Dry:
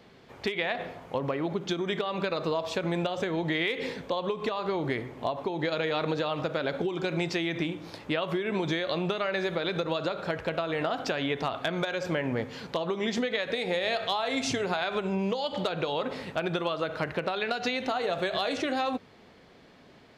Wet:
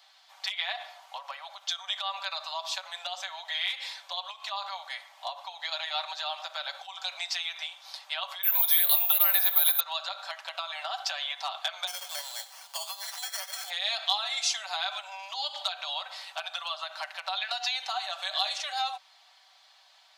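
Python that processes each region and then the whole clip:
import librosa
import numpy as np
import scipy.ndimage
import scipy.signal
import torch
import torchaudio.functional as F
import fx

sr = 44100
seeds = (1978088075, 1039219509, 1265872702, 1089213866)

y = fx.chain(x, sr, fx.highpass(hz=320.0, slope=12),
    fx.resample_bad(factor=3, down='filtered', up='zero_stuff'), at=(8.43, 9.8))
y = fx.chain(y, sr, fx.peak_eq(hz=1800.0, db=-4.5, octaves=2.4),
    fx.sample_hold(seeds[0], rate_hz=3800.0, jitter_pct=0), at=(11.87, 13.7))
y = scipy.signal.sosfilt(scipy.signal.butter(12, 670.0, 'highpass', fs=sr, output='sos'), y)
y = fx.high_shelf_res(y, sr, hz=2900.0, db=7.0, q=1.5)
y = y + 0.65 * np.pad(y, (int(5.2 * sr / 1000.0), 0))[:len(y)]
y = F.gain(torch.from_numpy(y), -3.5).numpy()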